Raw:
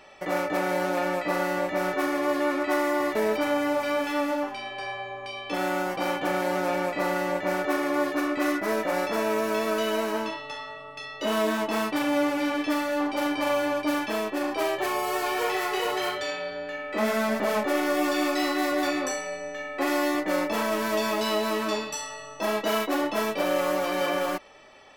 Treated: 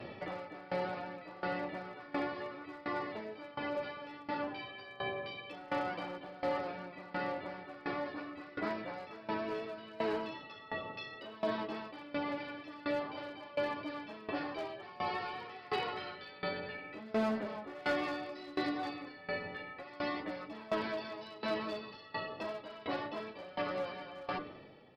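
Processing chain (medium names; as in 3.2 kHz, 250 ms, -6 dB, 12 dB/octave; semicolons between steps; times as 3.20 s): de-hum 98.47 Hz, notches 40; compression 6:1, threshold -32 dBFS, peak gain reduction 12 dB; chorus voices 4, 0.63 Hz, delay 11 ms, depth 1.7 ms; resampled via 11.025 kHz; one-sided clip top -30.5 dBFS, bottom -30 dBFS; band noise 95–590 Hz -52 dBFS; sawtooth tremolo in dB decaying 1.4 Hz, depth 20 dB; trim +5.5 dB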